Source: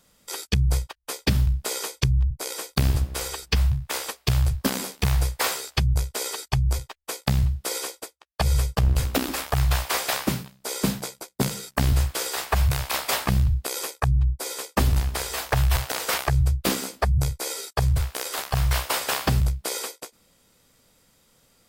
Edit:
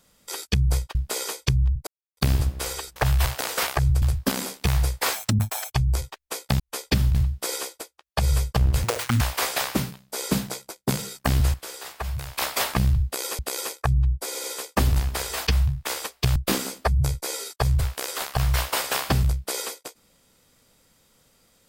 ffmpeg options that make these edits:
-filter_complex "[0:a]asplit=19[a][b][c][d][e][f][g][h][i][j][k][l][m][n][o][p][q][r][s];[a]atrim=end=0.952[t];[b]atrim=start=1.498:end=2.42,asetpts=PTS-STARTPTS,afade=t=out:st=0.918:d=0.004:c=hsin[u];[c]atrim=start=2.42:end=2.72,asetpts=PTS-STARTPTS,volume=0[v];[d]atrim=start=2.72:end=3.512,asetpts=PTS-STARTPTS,afade=t=in:d=0.004:c=hsin[w];[e]atrim=start=15.468:end=16.532[x];[f]atrim=start=4.398:end=5.514[y];[g]atrim=start=5.51:end=6.5,asetpts=PTS-STARTPTS,asetrate=73206,aresample=44100[z];[h]atrim=start=6.496:end=7.372[aa];[i]atrim=start=0.948:end=1.502[ab];[j]atrim=start=7.368:end=9.064[ac];[k]atrim=start=9.06:end=9.73,asetpts=PTS-STARTPTS,asetrate=79380,aresample=44100[ad];[l]atrim=start=9.726:end=12.062[ae];[m]atrim=start=12.058:end=12.902,asetpts=PTS-STARTPTS,volume=-9dB[af];[n]atrim=start=12.898:end=13.912[ag];[o]atrim=start=13.568:end=14.532[ah];[p]atrim=start=14.438:end=14.532[ai];[q]atrim=start=14.438:end=15.472[aj];[r]atrim=start=3.508:end=4.402[ak];[s]atrim=start=16.528[al];[u][v][w]concat=n=3:v=0:a=1[am];[t][am]acrossfade=d=0.004:c1=hsin:c2=hsin[an];[an][x]acrossfade=d=0.004:c1=hsin:c2=hsin[ao];[ao][y]acrossfade=d=0.004:c1=hsin:c2=hsin[ap];[ap][z]acrossfade=d=0.004:c1=hsin:c2=hsin[aq];[aq][aa]acrossfade=d=0.004:c1=hsin:c2=hsin[ar];[ar][ab]acrossfade=d=0.004:c1=hsin:c2=hsin[as];[as][ac]acrossfade=d=0.004:c1=hsin:c2=hsin[at];[at][ad]acrossfade=d=0.004:c1=hsin:c2=hsin[au];[au][ae]acrossfade=d=0.004:c1=hsin:c2=hsin[av];[av][af]acrossfade=d=0.004:c1=hsin:c2=hsin[aw];[aw][ag]acrossfade=d=0.004:c1=hsin:c2=hsin[ax];[ax][ah]acrossfade=d=0.004:c1=hsin:c2=hsin[ay];[ay][ai]acrossfade=d=0.004:c1=hsin:c2=hsin[az];[az][aj]acrossfade=d=0.004:c1=hsin:c2=hsin[ba];[ba][ak]acrossfade=d=0.004:c1=hsin:c2=hsin[bb];[bb][al]acrossfade=d=0.004:c1=hsin:c2=hsin"

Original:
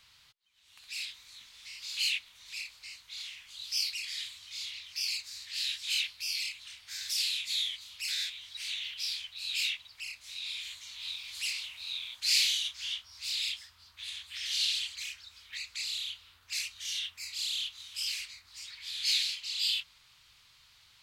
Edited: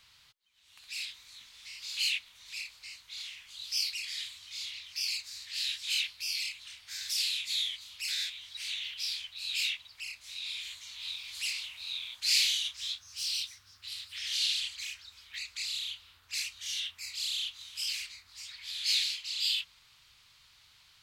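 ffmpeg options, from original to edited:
-filter_complex "[0:a]asplit=3[a][b][c];[a]atrim=end=12.774[d];[b]atrim=start=12.77:end=14.32,asetpts=PTS-STARTPTS,asetrate=50274,aresample=44100[e];[c]atrim=start=14.316[f];[d][e]acrossfade=d=0.004:c1=hsin:c2=hsin[g];[g][f]acrossfade=d=0.004:c1=hsin:c2=hsin"

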